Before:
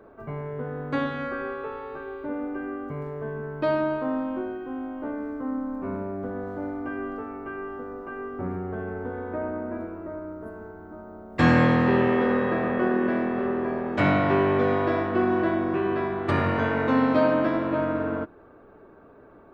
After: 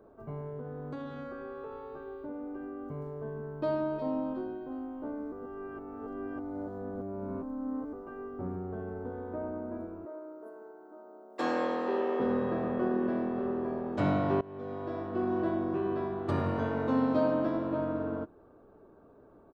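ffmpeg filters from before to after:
-filter_complex "[0:a]asettb=1/sr,asplit=3[a][b][c];[a]atrim=end=0.494[d];[b]atrim=start=0.49:end=2.89,asetpts=PTS-STARTPTS,afade=t=in:d=0.004:c=qsin,afade=t=out:st=2.396:d=0.004:c=qsin,acompressor=threshold=-30dB:ratio=4:attack=3.2:release=140:knee=1:detection=peak[e];[c]atrim=start=2.886[f];[d][e]acrossfade=d=0.004:c1=hsin:c2=qsin[g];[g][f]acrossfade=d=0.004:c1=qsin:c2=hsin,asplit=2[h][i];[i]afade=t=in:st=3.56:d=0.01,afade=t=out:st=3.97:d=0.01,aecho=0:1:360|720|1080|1440:0.354813|0.124185|0.0434646|0.0152126[j];[h][j]amix=inputs=2:normalize=0,asettb=1/sr,asplit=3[k][l][m];[k]atrim=end=10.054[n];[l]atrim=start=10.05:end=12.2,asetpts=PTS-STARTPTS,afade=t=in:d=0.004:c=qsin,afade=t=out:st=2.146:d=0.004:c=qsin,highpass=f=330:w=0.5412,highpass=f=330:w=1.3066[o];[m]atrim=start=12.196[p];[n][o]acrossfade=d=0.004:c1=hsin:c2=qsin[q];[q][p]acrossfade=d=0.004:c1=qsin:c2=hsin,asplit=4[r][s][t][u];[r]atrim=end=5.322[v];[s]atrim=start=5.318:end=7.932,asetpts=PTS-STARTPTS,areverse[w];[t]atrim=start=7.928:end=14.41,asetpts=PTS-STARTPTS,afade=t=out:st=6.478:d=0.004:c=hsin:silence=0.0749894[x];[u]atrim=start=14.41,asetpts=PTS-STARTPTS,afade=t=in:d=1.07:silence=0.0749894[y];[v][w]acrossfade=d=0.004:c1=hsin:c2=hsin[z];[x][y]concat=n=2:v=0:a=1[aa];[z][aa]acrossfade=d=0.004:c1=hsin:c2=hsin,equalizer=f=2.1k:t=o:w=1.2:g=-12,volume=-5.5dB"

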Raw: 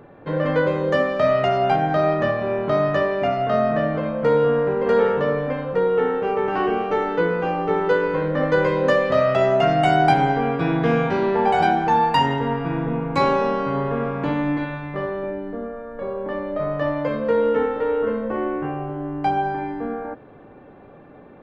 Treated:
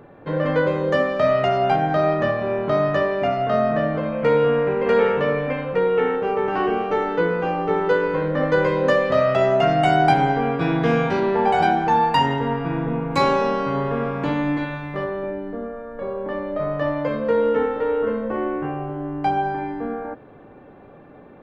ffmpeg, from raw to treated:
-filter_complex "[0:a]asettb=1/sr,asplit=3[a][b][c];[a]atrim=end=4.124[d];[b]atrim=start=4.12:end=6.16,asetpts=PTS-STARTPTS,afade=t=in:d=0.004:c=qsin,afade=t=out:st=2.036:d=0.004:c=qsin,equalizer=f=2.4k:t=o:w=0.56:g=9[e];[c]atrim=start=6.156[f];[d][e]acrossfade=d=0.004:c1=hsin:c2=qsin[g];[g][f]acrossfade=d=0.004:c1=qsin:c2=hsin,asettb=1/sr,asplit=3[h][i][j];[h]atrim=end=10.614[k];[i]atrim=start=10.61:end=11.2,asetpts=PTS-STARTPTS,afade=t=in:d=0.004:c=qsin,afade=t=out:st=0.586:d=0.004:c=qsin,highshelf=f=4.8k:g=7.5[l];[j]atrim=start=11.196[m];[k][l]acrossfade=d=0.004:c1=hsin:c2=qsin[n];[n][m]acrossfade=d=0.004:c1=qsin:c2=hsin,asettb=1/sr,asplit=3[o][p][q];[o]atrim=end=13.114[r];[p]atrim=start=13.11:end=15.04,asetpts=PTS-STARTPTS,afade=t=in:d=0.004:c=qsin,afade=t=out:st=1.926:d=0.004:c=qsin,highshelf=f=4.5k:g=8.5[s];[q]atrim=start=15.036[t];[r][s]acrossfade=d=0.004:c1=hsin:c2=qsin[u];[u][t]acrossfade=d=0.004:c1=qsin:c2=hsin"

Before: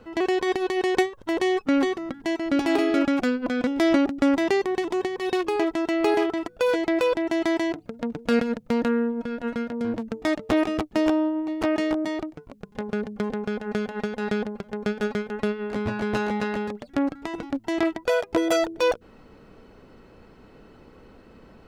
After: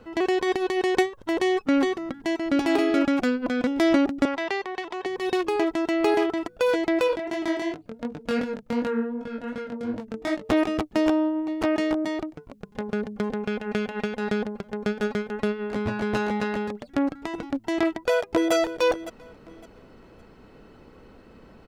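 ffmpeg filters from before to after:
-filter_complex "[0:a]asettb=1/sr,asplit=3[a][b][c];[a]atrim=end=4.254[d];[b]atrim=start=4.25:end=5.06,asetpts=PTS-STARTPTS,afade=t=in:d=0.004:c=qsin,afade=t=out:st=0.806:d=0.004:c=qsin,acrossover=split=560 5200:gain=0.2 1 0.178[e][f][g];[e][f][g]amix=inputs=3:normalize=0[h];[c]atrim=start=5.056[i];[d][h]acrossfade=d=0.004:c1=hsin:c2=qsin[j];[j][i]acrossfade=d=0.004:c1=qsin:c2=hsin,asplit=3[k][l][m];[k]afade=t=out:st=7.07:d=0.02[n];[l]flanger=delay=19:depth=4:speed=2.7,afade=t=in:st=7.07:d=0.02,afade=t=out:st=10.44:d=0.02[o];[m]afade=t=in:st=10.44:d=0.02[p];[n][o][p]amix=inputs=3:normalize=0,asettb=1/sr,asplit=3[q][r][s];[q]atrim=end=13.404[t];[r]atrim=start=13.4:end=14.18,asetpts=PTS-STARTPTS,afade=t=in:d=0.004:c=qsin,afade=t=out:st=0.776:d=0.004:c=qsin,equalizer=f=2.6k:w=2:g=6.5[u];[s]atrim=start=14.176[v];[t][u]acrossfade=d=0.004:c1=hsin:c2=qsin[w];[w][v]acrossfade=d=0.004:c1=qsin:c2=hsin,asplit=2[x][y];[y]afade=t=in:st=17.83:d=0.01,afade=t=out:st=18.53:d=0.01,aecho=0:1:560|1120|1680:0.199526|0.0498816|0.0124704[z];[x][z]amix=inputs=2:normalize=0"

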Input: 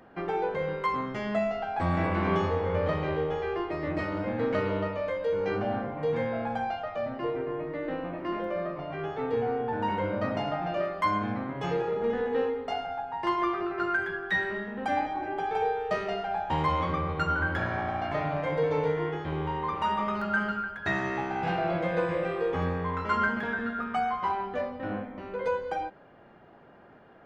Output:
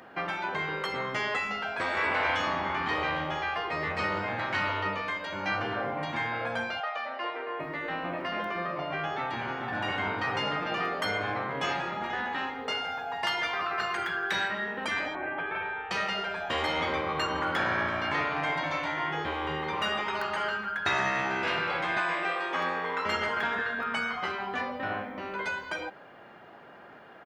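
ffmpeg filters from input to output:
-filter_complex "[0:a]asettb=1/sr,asplit=3[a][b][c];[a]atrim=end=6.804[d];[b]atrim=start=6.8:end=7.6,asetpts=PTS-STARTPTS,afade=t=in:d=0.004:c=qsin,afade=t=out:st=0.796:d=0.004:c=qsin,highpass=650,lowpass=5.4k[e];[c]atrim=start=7.596[f];[d][e]acrossfade=d=0.004:c1=hsin:c2=qsin[g];[g][f]acrossfade=d=0.004:c1=qsin:c2=hsin,asplit=2[h][i];[i]afade=t=in:st=8.94:d=0.01,afade=t=out:st=9.63:d=0.01,aecho=0:1:440|880|1320|1760|2200|2640|3080|3520|3960|4400|4840|5280:0.421697|0.316272|0.237204|0.177903|0.133427|0.100071|0.0750529|0.0562897|0.0422173|0.0316629|0.0237472|0.0178104[j];[h][j]amix=inputs=2:normalize=0,asettb=1/sr,asplit=3[k][l][m];[k]atrim=end=12.844[n];[l]atrim=start=12.84:end=14.48,asetpts=PTS-STARTPTS,afade=t=in:d=0.004:c=qsin,afade=t=out:st=1.636:d=0.004:c=qsin,highshelf=f=3.9k:g=5.5[o];[m]atrim=start=14.476[p];[n][o]acrossfade=d=0.004:c1=hsin:c2=qsin[q];[q][p]acrossfade=d=0.004:c1=qsin:c2=hsin,asettb=1/sr,asplit=3[r][s][t];[r]atrim=end=15.154[u];[s]atrim=start=15.15:end=15.91,asetpts=PTS-STARTPTS,afade=t=in:d=0.004:c=qsin,afade=t=out:st=0.756:d=0.004:c=qsin,lowpass=f=2.6k:w=0.5412,lowpass=f=2.6k:w=1.3066[v];[t]atrim=start=15.906[w];[u][v]acrossfade=d=0.004:c1=hsin:c2=qsin[x];[x][w]acrossfade=d=0.004:c1=qsin:c2=hsin,asettb=1/sr,asplit=3[y][z][aa];[y]atrim=end=21.974[ab];[z]atrim=start=21.97:end=23.06,asetpts=PTS-STARTPTS,afade=t=in:d=0.004:c=qsin,afade=t=out:st=1.086:d=0.004:c=qsin,highpass=350[ac];[aa]atrim=start=23.056[ad];[ab][ac]acrossfade=d=0.004:c1=hsin:c2=qsin[ae];[ae][ad]acrossfade=d=0.004:c1=qsin:c2=hsin,highpass=f=110:p=1,afftfilt=real='re*lt(hypot(re,im),0.126)':imag='im*lt(hypot(re,im),0.126)':win_size=1024:overlap=0.75,tiltshelf=f=790:g=-5,volume=5dB"

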